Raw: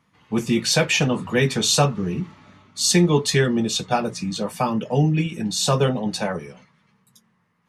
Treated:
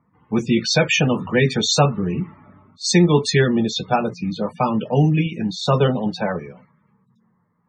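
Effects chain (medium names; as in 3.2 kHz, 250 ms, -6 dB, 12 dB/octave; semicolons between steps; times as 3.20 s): loudest bins only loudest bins 64; vibrato 14 Hz 22 cents; level-controlled noise filter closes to 1.1 kHz, open at -14.5 dBFS; trim +2.5 dB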